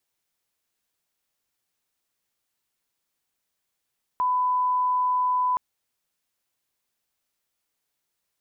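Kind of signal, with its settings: line-up tone -20 dBFS 1.37 s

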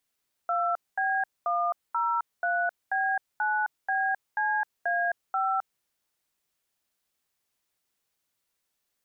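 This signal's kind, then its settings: DTMF "2B103B9BCA5", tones 263 ms, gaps 222 ms, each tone -26.5 dBFS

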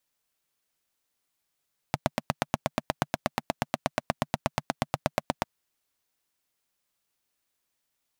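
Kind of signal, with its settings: single-cylinder engine model, steady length 3.50 s, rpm 1000, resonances 150/230/640 Hz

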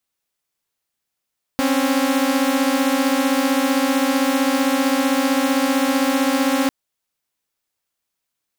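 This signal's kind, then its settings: chord C4/C#4 saw, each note -16.5 dBFS 5.10 s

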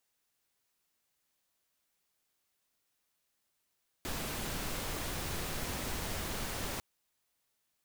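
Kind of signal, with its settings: noise pink, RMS -37.5 dBFS 2.75 s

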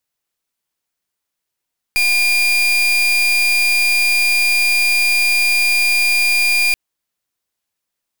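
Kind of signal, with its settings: pulse 2.41 kHz, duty 36% -14.5 dBFS 4.78 s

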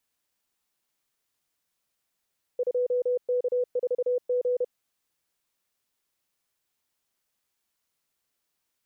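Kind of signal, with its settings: Morse "2K4G" 31 wpm 495 Hz -22 dBFS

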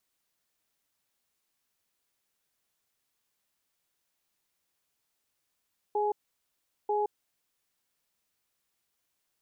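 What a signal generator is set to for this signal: cadence 416 Hz, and 838 Hz, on 0.17 s, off 0.77 s, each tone -28 dBFS 1.83 s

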